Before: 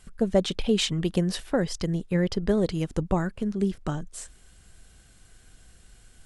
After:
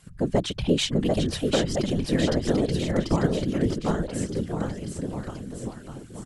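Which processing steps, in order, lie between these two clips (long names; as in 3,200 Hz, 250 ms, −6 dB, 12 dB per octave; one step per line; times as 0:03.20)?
bouncing-ball delay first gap 740 ms, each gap 0.9×, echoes 5
random phases in short frames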